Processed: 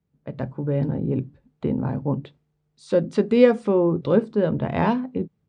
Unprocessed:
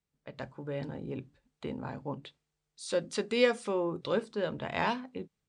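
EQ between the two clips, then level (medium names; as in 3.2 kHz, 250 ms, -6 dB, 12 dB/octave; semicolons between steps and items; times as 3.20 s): high-pass 120 Hz 12 dB/octave; tilt EQ -4.5 dB/octave; +6.0 dB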